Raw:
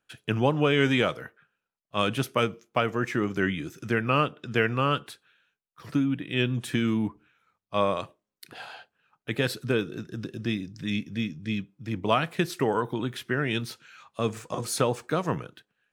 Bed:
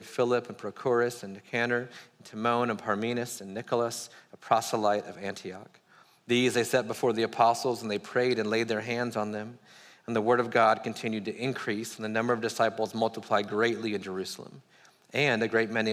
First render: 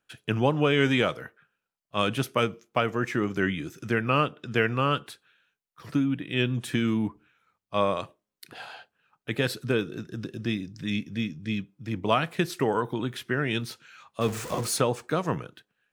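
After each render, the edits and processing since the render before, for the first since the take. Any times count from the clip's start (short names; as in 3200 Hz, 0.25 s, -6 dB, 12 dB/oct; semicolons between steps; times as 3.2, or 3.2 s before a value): 14.21–14.77 zero-crossing step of -33 dBFS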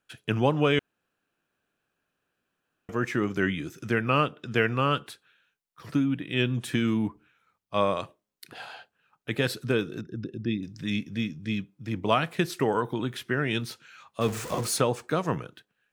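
0.79–2.89 room tone; 10.01–10.63 formant sharpening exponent 1.5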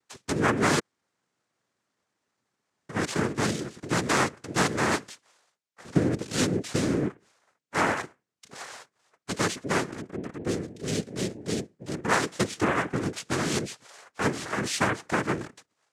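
noise vocoder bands 3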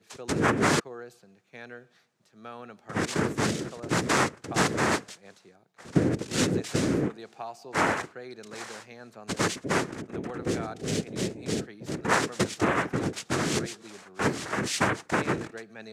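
add bed -16 dB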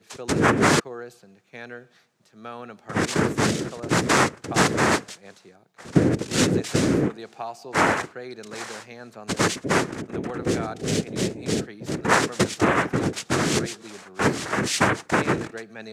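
gain +5 dB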